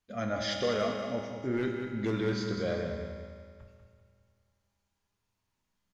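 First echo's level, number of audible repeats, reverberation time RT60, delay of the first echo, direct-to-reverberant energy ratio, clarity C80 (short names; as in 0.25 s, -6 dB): -8.5 dB, 2, 2.1 s, 0.194 s, 0.5 dB, 3.0 dB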